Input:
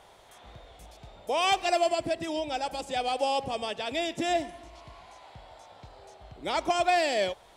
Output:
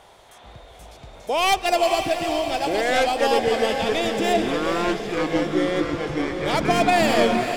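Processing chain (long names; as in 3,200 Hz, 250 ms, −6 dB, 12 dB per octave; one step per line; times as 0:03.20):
stylus tracing distortion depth 0.066 ms
feedback delay with all-pass diffusion 479 ms, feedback 55%, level −7 dB
delay with pitch and tempo change per echo 731 ms, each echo −7 semitones, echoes 3
level +5 dB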